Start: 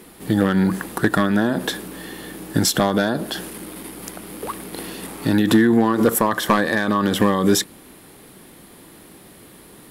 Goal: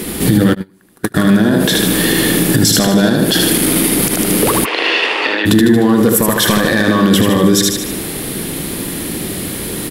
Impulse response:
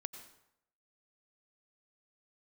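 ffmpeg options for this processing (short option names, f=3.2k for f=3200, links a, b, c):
-filter_complex "[0:a]acompressor=threshold=-27dB:ratio=6,equalizer=f=960:w=0.86:g=-8.5,aecho=1:1:76|152|228|304|380|456|532:0.596|0.31|0.161|0.0838|0.0436|0.0226|0.0118,asplit=3[a][b][c];[a]afade=t=out:st=0.53:d=0.02[d];[b]agate=range=-36dB:threshold=-26dB:ratio=16:detection=peak,afade=t=in:st=0.53:d=0.02,afade=t=out:st=1.14:d=0.02[e];[c]afade=t=in:st=1.14:d=0.02[f];[d][e][f]amix=inputs=3:normalize=0,asplit=3[g][h][i];[g]afade=t=out:st=4.64:d=0.02[j];[h]highpass=f=470:w=0.5412,highpass=f=470:w=1.3066,equalizer=f=1k:t=q:w=4:g=6,equalizer=f=1.9k:t=q:w=4:g=4,equalizer=f=2.7k:t=q:w=4:g=8,equalizer=f=4k:t=q:w=4:g=-5,lowpass=f=4.4k:w=0.5412,lowpass=f=4.4k:w=1.3066,afade=t=in:st=4.64:d=0.02,afade=t=out:st=5.45:d=0.02[k];[i]afade=t=in:st=5.45:d=0.02[l];[j][k][l]amix=inputs=3:normalize=0,alimiter=level_in=23.5dB:limit=-1dB:release=50:level=0:latency=1,volume=-1dB"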